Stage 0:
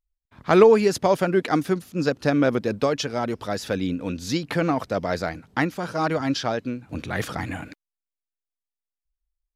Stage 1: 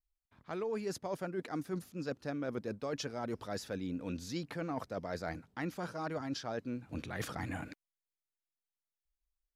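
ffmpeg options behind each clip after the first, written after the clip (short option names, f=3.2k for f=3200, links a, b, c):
-af "adynamicequalizer=threshold=0.00501:dfrequency=3000:dqfactor=1.5:tfrequency=3000:tqfactor=1.5:attack=5:release=100:ratio=0.375:range=3:mode=cutabove:tftype=bell,areverse,acompressor=threshold=-28dB:ratio=12,areverse,volume=-6.5dB"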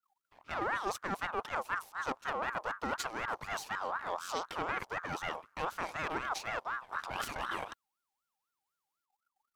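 -af "aeval=exprs='if(lt(val(0),0),0.251*val(0),val(0))':c=same,aeval=exprs='val(0)*sin(2*PI*1100*n/s+1100*0.3/4*sin(2*PI*4*n/s))':c=same,volume=8dB"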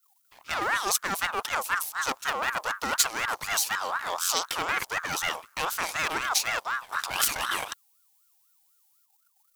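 -af "crystalizer=i=8.5:c=0,volume=1.5dB"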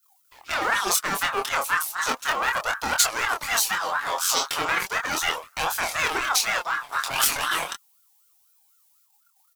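-filter_complex "[0:a]asplit=2[a][b];[b]adelay=25,volume=-4.5dB[c];[a][c]amix=inputs=2:normalize=0,flanger=delay=1.2:depth=6.3:regen=39:speed=0.35:shape=sinusoidal,volume=6.5dB"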